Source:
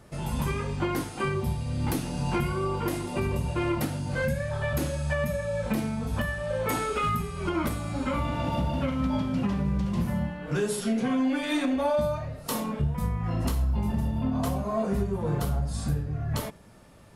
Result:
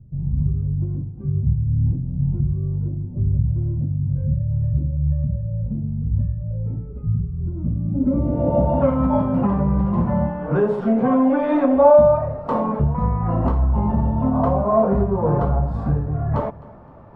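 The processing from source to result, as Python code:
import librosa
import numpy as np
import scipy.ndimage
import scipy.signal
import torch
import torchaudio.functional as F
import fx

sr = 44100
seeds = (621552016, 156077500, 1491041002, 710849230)

p1 = fx.dynamic_eq(x, sr, hz=560.0, q=5.3, threshold_db=-44.0, ratio=4.0, max_db=6)
p2 = fx.filter_sweep_lowpass(p1, sr, from_hz=120.0, to_hz=980.0, start_s=7.55, end_s=8.88, q=1.8)
p3 = p2 + fx.echo_feedback(p2, sr, ms=259, feedback_pct=40, wet_db=-21.5, dry=0)
y = F.gain(torch.from_numpy(p3), 7.5).numpy()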